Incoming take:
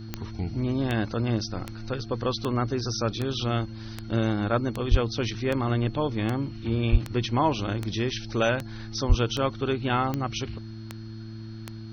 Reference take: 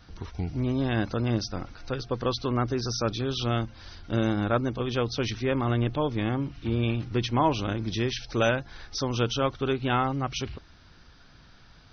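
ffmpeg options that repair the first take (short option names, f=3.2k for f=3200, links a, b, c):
-filter_complex "[0:a]adeclick=t=4,bandreject=f=110.7:t=h:w=4,bandreject=f=221.4:t=h:w=4,bandreject=f=332.1:t=h:w=4,bandreject=f=4.3k:w=30,asplit=3[a][b][c];[a]afade=t=out:st=4.9:d=0.02[d];[b]highpass=f=140:w=0.5412,highpass=f=140:w=1.3066,afade=t=in:st=4.9:d=0.02,afade=t=out:st=5.02:d=0.02[e];[c]afade=t=in:st=5.02:d=0.02[f];[d][e][f]amix=inputs=3:normalize=0,asplit=3[g][h][i];[g]afade=t=out:st=6.91:d=0.02[j];[h]highpass=f=140:w=0.5412,highpass=f=140:w=1.3066,afade=t=in:st=6.91:d=0.02,afade=t=out:st=7.03:d=0.02[k];[i]afade=t=in:st=7.03:d=0.02[l];[j][k][l]amix=inputs=3:normalize=0,asplit=3[m][n][o];[m]afade=t=out:st=9.08:d=0.02[p];[n]highpass=f=140:w=0.5412,highpass=f=140:w=1.3066,afade=t=in:st=9.08:d=0.02,afade=t=out:st=9.2:d=0.02[q];[o]afade=t=in:st=9.2:d=0.02[r];[p][q][r]amix=inputs=3:normalize=0"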